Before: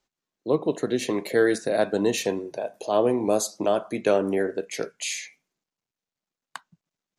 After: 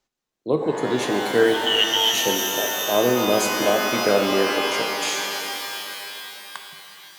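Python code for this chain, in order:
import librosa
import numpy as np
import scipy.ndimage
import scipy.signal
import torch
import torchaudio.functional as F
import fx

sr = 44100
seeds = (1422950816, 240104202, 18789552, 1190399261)

y = fx.freq_invert(x, sr, carrier_hz=3500, at=(1.54, 2.14))
y = fx.rev_shimmer(y, sr, seeds[0], rt60_s=3.5, semitones=12, shimmer_db=-2, drr_db=4.0)
y = y * librosa.db_to_amplitude(1.0)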